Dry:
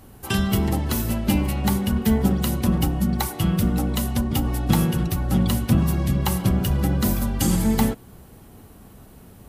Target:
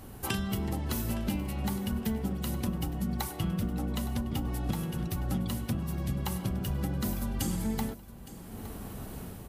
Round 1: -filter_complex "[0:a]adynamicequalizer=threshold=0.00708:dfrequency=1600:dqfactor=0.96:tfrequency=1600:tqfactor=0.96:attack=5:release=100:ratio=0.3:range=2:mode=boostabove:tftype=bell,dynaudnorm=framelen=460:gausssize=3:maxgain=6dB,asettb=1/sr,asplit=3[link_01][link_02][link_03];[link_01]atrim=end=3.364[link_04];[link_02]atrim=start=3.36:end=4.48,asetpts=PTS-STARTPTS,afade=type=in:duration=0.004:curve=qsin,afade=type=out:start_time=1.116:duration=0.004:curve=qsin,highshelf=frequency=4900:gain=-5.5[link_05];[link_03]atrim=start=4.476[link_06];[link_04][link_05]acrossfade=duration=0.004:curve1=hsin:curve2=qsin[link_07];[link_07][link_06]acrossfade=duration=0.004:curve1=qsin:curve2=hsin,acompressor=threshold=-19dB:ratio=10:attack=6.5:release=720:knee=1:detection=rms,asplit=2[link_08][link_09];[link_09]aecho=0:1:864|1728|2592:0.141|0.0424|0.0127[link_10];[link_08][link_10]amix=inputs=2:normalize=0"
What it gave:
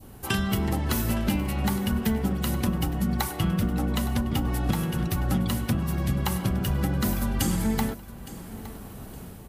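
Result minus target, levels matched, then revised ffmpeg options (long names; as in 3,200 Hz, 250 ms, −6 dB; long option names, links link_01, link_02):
downward compressor: peak gain reduction −6.5 dB; 2,000 Hz band +2.5 dB
-filter_complex "[0:a]dynaudnorm=framelen=460:gausssize=3:maxgain=6dB,asettb=1/sr,asplit=3[link_01][link_02][link_03];[link_01]atrim=end=3.364[link_04];[link_02]atrim=start=3.36:end=4.48,asetpts=PTS-STARTPTS,afade=type=in:duration=0.004:curve=qsin,afade=type=out:start_time=1.116:duration=0.004:curve=qsin,highshelf=frequency=4900:gain=-5.5[link_05];[link_03]atrim=start=4.476[link_06];[link_04][link_05]acrossfade=duration=0.004:curve1=hsin:curve2=qsin[link_07];[link_07][link_06]acrossfade=duration=0.004:curve1=qsin:curve2=hsin,acompressor=threshold=-26dB:ratio=10:attack=6.5:release=720:knee=1:detection=rms,asplit=2[link_08][link_09];[link_09]aecho=0:1:864|1728|2592:0.141|0.0424|0.0127[link_10];[link_08][link_10]amix=inputs=2:normalize=0"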